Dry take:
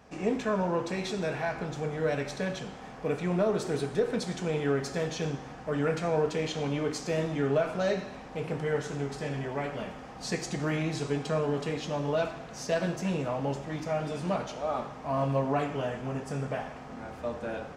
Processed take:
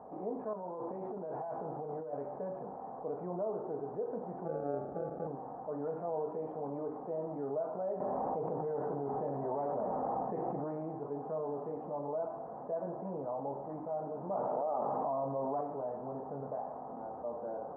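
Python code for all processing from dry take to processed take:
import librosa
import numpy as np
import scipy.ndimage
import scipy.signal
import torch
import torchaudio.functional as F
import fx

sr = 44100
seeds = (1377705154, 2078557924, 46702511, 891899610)

y = fx.chain(x, sr, fx.highpass(hz=43.0, slope=12),
    fx.over_compress(threshold_db=-35.0, ratio=-1.0), at=(0.53, 2.13))
y = fx.chain(y, sr, fx.tilt_eq(slope=-1.5),
    fx.sample_hold(seeds[0], rate_hz=1000.0, jitter_pct=0), at=(4.45, 5.27))
y = fx.chain(y, sr, fx.high_shelf(hz=6000.0, db=-11.0),
    fx.env_flatten(amount_pct=100), at=(8.0, 10.64))
y = fx.chain(y, sr, fx.highpass(hz=94.0, slope=12),
    fx.env_flatten(amount_pct=100), at=(14.29, 15.61))
y = scipy.signal.sosfilt(scipy.signal.butter(6, 890.0, 'lowpass', fs=sr, output='sos'), y)
y = np.diff(y, prepend=0.0)
y = fx.env_flatten(y, sr, amount_pct=50)
y = y * librosa.db_to_amplitude(11.5)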